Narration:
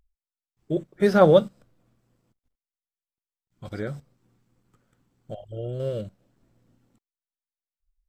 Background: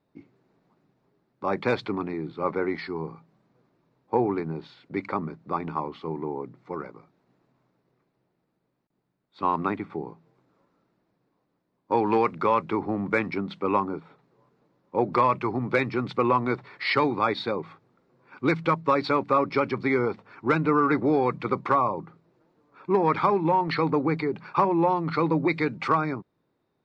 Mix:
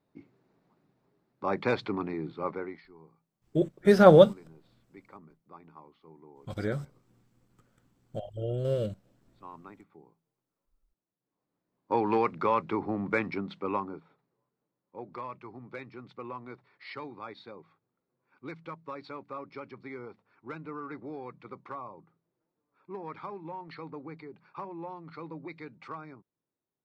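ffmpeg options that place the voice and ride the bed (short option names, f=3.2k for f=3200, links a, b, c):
-filter_complex "[0:a]adelay=2850,volume=0dB[a];[1:a]volume=15dB,afade=t=out:st=2.28:d=0.55:silence=0.112202,afade=t=in:st=11.19:d=0.72:silence=0.125893,afade=t=out:st=13.25:d=1.2:silence=0.188365[b];[a][b]amix=inputs=2:normalize=0"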